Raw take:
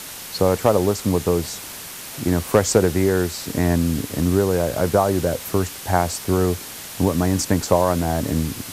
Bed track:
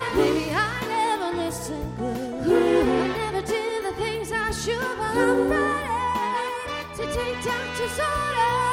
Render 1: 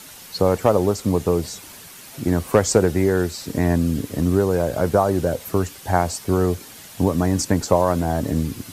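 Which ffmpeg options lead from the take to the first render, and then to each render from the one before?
ffmpeg -i in.wav -af "afftdn=noise_reduction=8:noise_floor=-35" out.wav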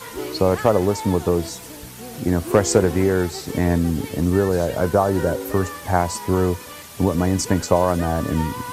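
ffmpeg -i in.wav -i bed.wav -filter_complex "[1:a]volume=-9.5dB[link_01];[0:a][link_01]amix=inputs=2:normalize=0" out.wav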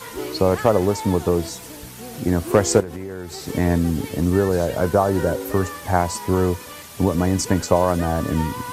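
ffmpeg -i in.wav -filter_complex "[0:a]asettb=1/sr,asplit=3[link_01][link_02][link_03];[link_01]atrim=end=2.804[link_04];[link_02]atrim=start=2.8:end=3.45,asetpts=PTS-STARTPTS,afade=type=in:duration=0.004:curve=qsin,afade=type=out:start_time=0.646:duration=0.004:curve=qsin,acompressor=threshold=-28dB:ratio=6:attack=3.2:release=140:knee=1:detection=peak[link_05];[link_03]atrim=start=3.446[link_06];[link_04][link_05]acrossfade=duration=0.004:curve1=hsin:curve2=qsin[link_07];[link_07][link_06]acrossfade=duration=0.004:curve1=qsin:curve2=hsin" out.wav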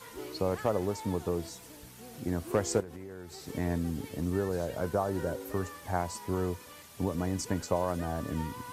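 ffmpeg -i in.wav -af "volume=-12.5dB" out.wav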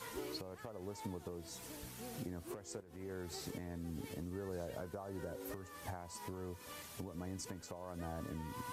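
ffmpeg -i in.wav -af "acompressor=threshold=-37dB:ratio=20,alimiter=level_in=9dB:limit=-24dB:level=0:latency=1:release=411,volume=-9dB" out.wav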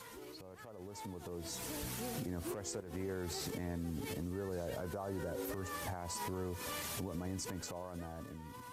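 ffmpeg -i in.wav -af "alimiter=level_in=18.5dB:limit=-24dB:level=0:latency=1:release=70,volume=-18.5dB,dynaudnorm=framelen=370:gausssize=7:maxgain=11dB" out.wav

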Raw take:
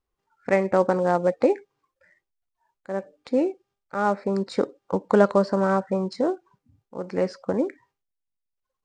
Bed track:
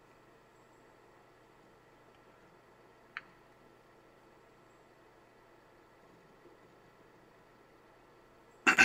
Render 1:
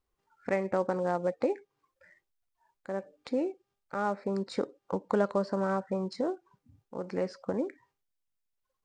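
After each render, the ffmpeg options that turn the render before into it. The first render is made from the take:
ffmpeg -i in.wav -af "acompressor=threshold=-41dB:ratio=1.5" out.wav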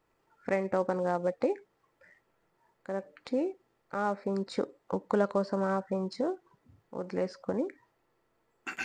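ffmpeg -i in.wav -i bed.wav -filter_complex "[1:a]volume=-13.5dB[link_01];[0:a][link_01]amix=inputs=2:normalize=0" out.wav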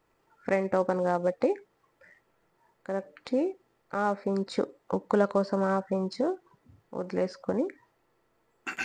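ffmpeg -i in.wav -af "volume=3dB" out.wav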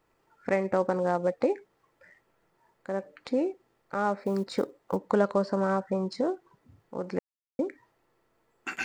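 ffmpeg -i in.wav -filter_complex "[0:a]asplit=3[link_01][link_02][link_03];[link_01]afade=type=out:start_time=4.19:duration=0.02[link_04];[link_02]acrusher=bits=8:mode=log:mix=0:aa=0.000001,afade=type=in:start_time=4.19:duration=0.02,afade=type=out:start_time=4.95:duration=0.02[link_05];[link_03]afade=type=in:start_time=4.95:duration=0.02[link_06];[link_04][link_05][link_06]amix=inputs=3:normalize=0,asplit=3[link_07][link_08][link_09];[link_07]atrim=end=7.19,asetpts=PTS-STARTPTS,afade=type=out:start_time=7.186:duration=0.004:curve=hsin[link_10];[link_08]atrim=start=7.19:end=7.59,asetpts=PTS-STARTPTS,volume=0[link_11];[link_09]atrim=start=7.59,asetpts=PTS-STARTPTS,afade=type=in:duration=0.004:curve=hsin[link_12];[link_10][link_11][link_12]concat=n=3:v=0:a=1" out.wav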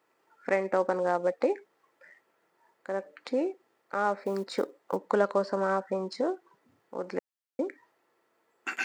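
ffmpeg -i in.wav -af "highpass=280,equalizer=frequency=1700:width=1.5:gain=2" out.wav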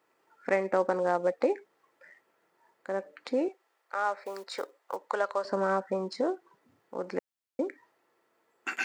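ffmpeg -i in.wav -filter_complex "[0:a]asettb=1/sr,asplit=3[link_01][link_02][link_03];[link_01]atrim=end=3.484[link_04];[link_02]atrim=start=3.48:end=5.45,asetpts=PTS-STARTPTS,afade=type=in:duration=0.004:curve=qsin,afade=type=out:start_time=1.966:duration=0.004:curve=qsin,highpass=660[link_05];[link_03]atrim=start=5.446[link_06];[link_04][link_05]acrossfade=duration=0.004:curve1=hsin:curve2=qsin[link_07];[link_07][link_06]acrossfade=duration=0.004:curve1=qsin:curve2=hsin" out.wav

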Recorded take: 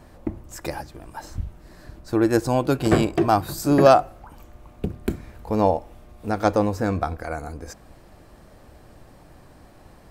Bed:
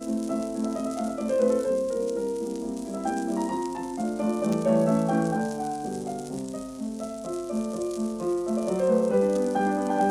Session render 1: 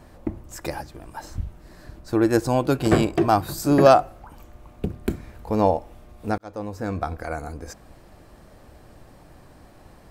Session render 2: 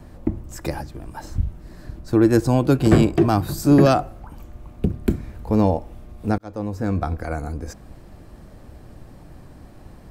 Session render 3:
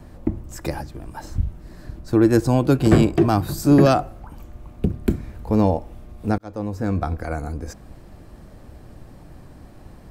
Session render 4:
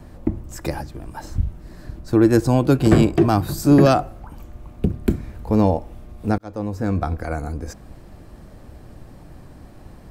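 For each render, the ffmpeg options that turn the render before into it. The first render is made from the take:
ffmpeg -i in.wav -filter_complex "[0:a]asplit=2[link_01][link_02];[link_01]atrim=end=6.38,asetpts=PTS-STARTPTS,afade=type=out:start_time=6.376:duration=0.004:curve=hsin[link_03];[link_02]atrim=start=6.38,asetpts=PTS-STARTPTS,afade=type=in:duration=0.85[link_04];[link_03][link_04]concat=n=2:v=0:a=1" out.wav
ffmpeg -i in.wav -filter_complex "[0:a]acrossover=split=330|1300|1800[link_01][link_02][link_03][link_04];[link_01]acontrast=88[link_05];[link_02]alimiter=limit=-15dB:level=0:latency=1[link_06];[link_05][link_06][link_03][link_04]amix=inputs=4:normalize=0" out.wav
ffmpeg -i in.wav -af anull out.wav
ffmpeg -i in.wav -af "volume=1dB,alimiter=limit=-3dB:level=0:latency=1" out.wav

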